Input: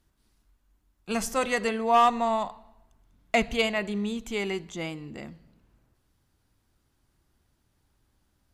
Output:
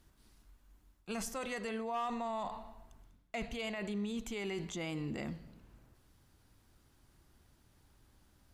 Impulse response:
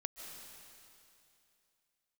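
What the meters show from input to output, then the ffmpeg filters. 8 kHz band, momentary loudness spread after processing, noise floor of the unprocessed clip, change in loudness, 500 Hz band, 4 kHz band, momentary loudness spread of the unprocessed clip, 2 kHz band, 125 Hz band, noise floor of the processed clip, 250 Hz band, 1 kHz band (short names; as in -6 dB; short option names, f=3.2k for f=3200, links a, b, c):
-8.5 dB, 10 LU, -72 dBFS, -13.0 dB, -12.5 dB, -12.0 dB, 16 LU, -13.0 dB, -4.0 dB, -69 dBFS, -8.0 dB, -15.0 dB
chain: -af "areverse,acompressor=threshold=-36dB:ratio=8,areverse,alimiter=level_in=10.5dB:limit=-24dB:level=0:latency=1:release=33,volume=-10.5dB,volume=4dB"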